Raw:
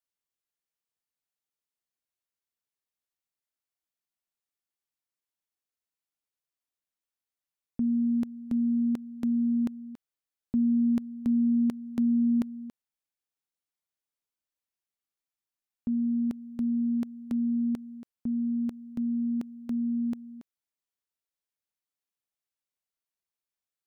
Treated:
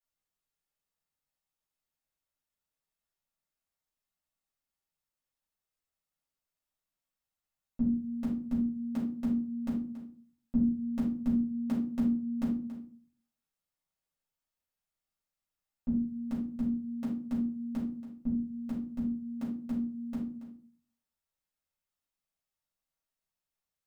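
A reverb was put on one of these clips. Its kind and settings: simulated room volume 310 m³, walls furnished, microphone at 6.6 m; trim -9 dB

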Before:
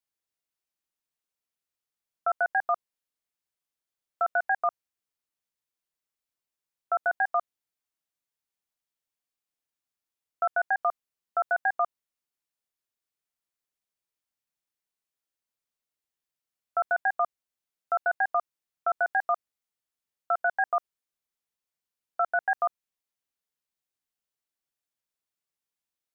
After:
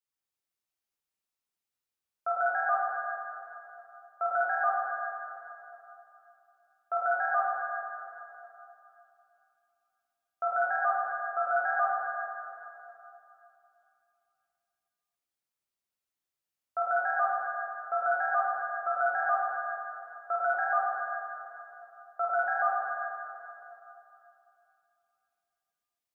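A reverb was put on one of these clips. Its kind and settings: plate-style reverb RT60 2.9 s, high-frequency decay 0.85×, DRR -6 dB; trim -7.5 dB

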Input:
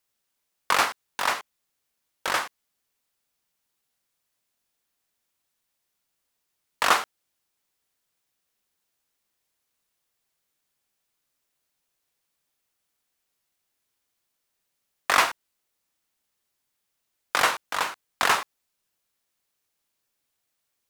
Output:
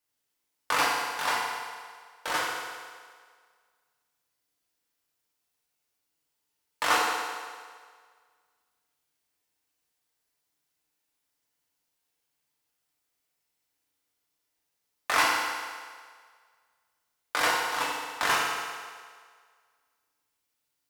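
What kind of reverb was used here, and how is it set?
FDN reverb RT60 1.8 s, low-frequency decay 0.7×, high-frequency decay 0.9×, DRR -4 dB; trim -7 dB

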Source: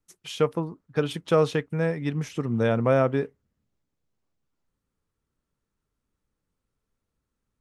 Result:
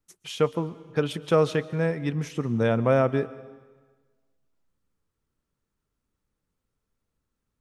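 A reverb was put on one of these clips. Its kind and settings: algorithmic reverb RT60 1.4 s, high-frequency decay 0.95×, pre-delay 95 ms, DRR 17.5 dB

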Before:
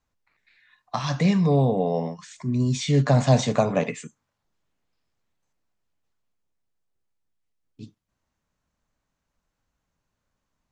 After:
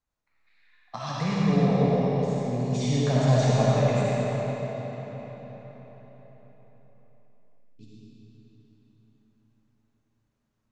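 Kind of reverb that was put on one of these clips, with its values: algorithmic reverb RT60 4.9 s, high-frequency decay 0.75×, pre-delay 20 ms, DRR -7.5 dB; trim -9.5 dB

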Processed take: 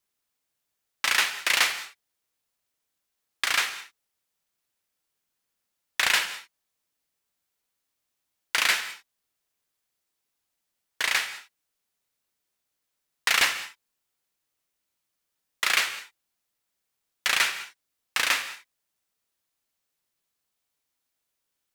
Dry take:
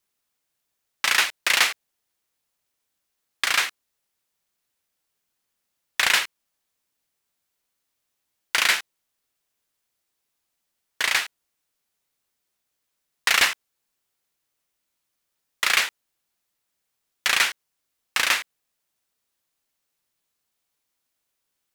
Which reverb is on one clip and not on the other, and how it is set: gated-style reverb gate 230 ms flat, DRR 10.5 dB; trim -3 dB

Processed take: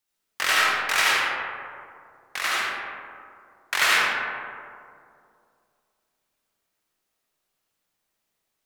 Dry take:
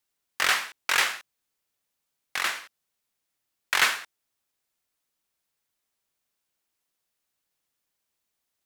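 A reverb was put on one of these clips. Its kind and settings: algorithmic reverb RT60 2.4 s, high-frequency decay 0.35×, pre-delay 35 ms, DRR -6.5 dB; trim -2 dB

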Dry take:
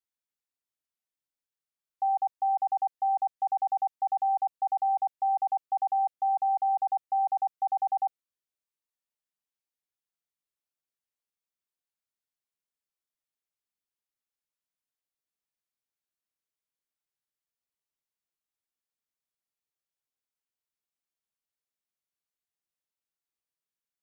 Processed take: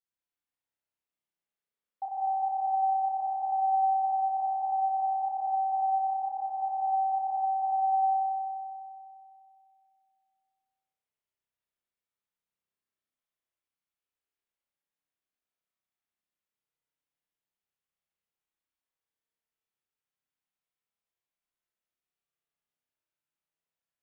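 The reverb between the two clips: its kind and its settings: spring tank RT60 2.5 s, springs 31 ms, chirp 80 ms, DRR -7.5 dB; trim -6.5 dB

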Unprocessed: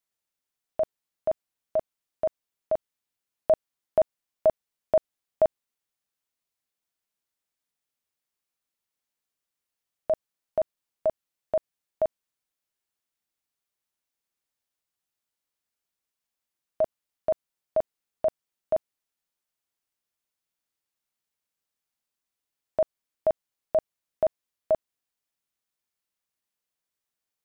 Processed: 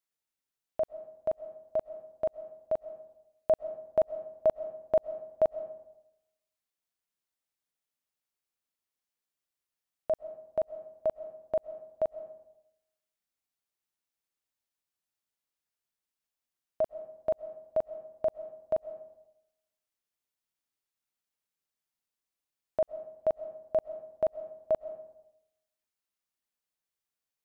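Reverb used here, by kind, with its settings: algorithmic reverb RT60 0.9 s, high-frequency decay 0.5×, pre-delay 90 ms, DRR 14 dB; trim -4 dB

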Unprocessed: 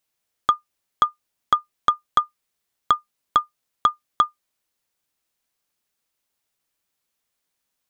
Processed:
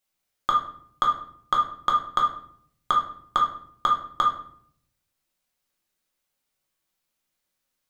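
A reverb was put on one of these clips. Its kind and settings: simulated room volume 100 m³, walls mixed, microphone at 1 m; trim -4.5 dB

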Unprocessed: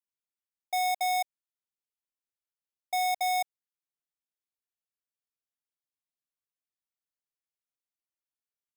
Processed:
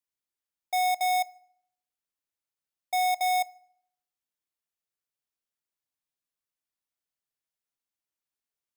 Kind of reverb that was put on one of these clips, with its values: FDN reverb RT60 0.66 s, low-frequency decay 1.35×, high-frequency decay 0.75×, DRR 18.5 dB; trim +1.5 dB

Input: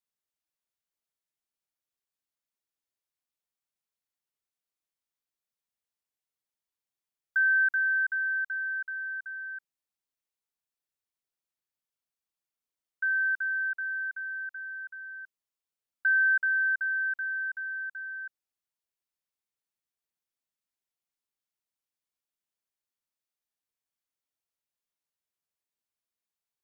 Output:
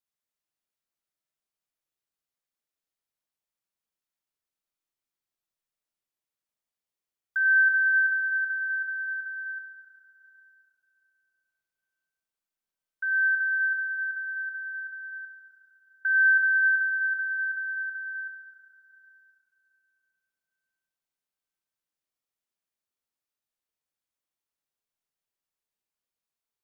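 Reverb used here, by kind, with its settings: algorithmic reverb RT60 4 s, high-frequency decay 0.35×, pre-delay 5 ms, DRR 2 dB; trim -1.5 dB

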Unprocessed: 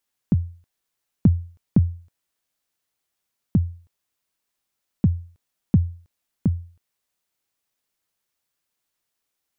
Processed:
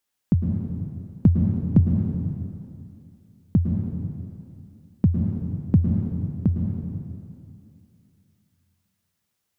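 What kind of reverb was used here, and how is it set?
plate-style reverb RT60 2.6 s, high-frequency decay 0.85×, pre-delay 95 ms, DRR 1 dB

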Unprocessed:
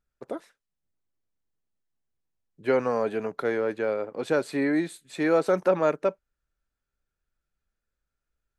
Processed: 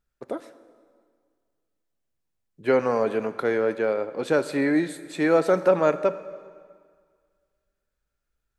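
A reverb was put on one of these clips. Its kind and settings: plate-style reverb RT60 1.9 s, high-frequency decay 0.85×, DRR 12.5 dB; trim +2.5 dB

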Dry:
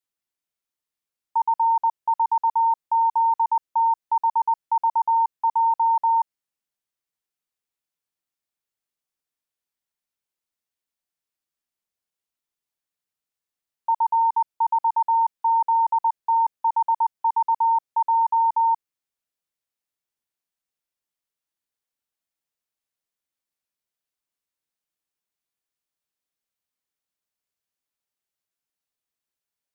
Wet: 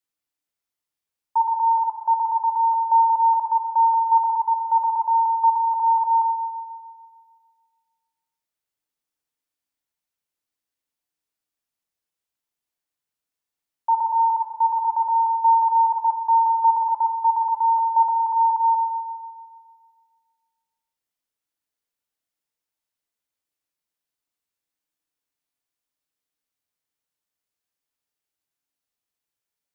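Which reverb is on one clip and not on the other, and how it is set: FDN reverb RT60 1.8 s, low-frequency decay 1.05×, high-frequency decay 0.7×, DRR 5 dB

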